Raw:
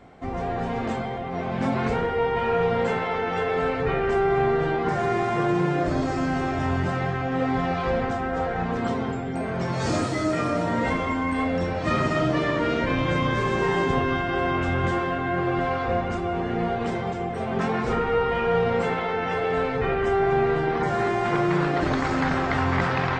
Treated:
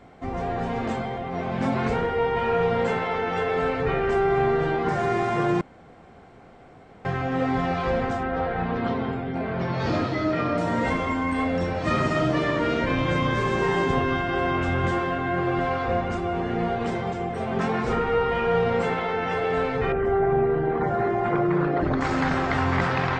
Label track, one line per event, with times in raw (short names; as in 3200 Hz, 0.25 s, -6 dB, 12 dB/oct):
5.610000	7.050000	room tone
8.230000	10.580000	LPF 4400 Hz 24 dB/oct
19.920000	22.010000	formant sharpening exponent 1.5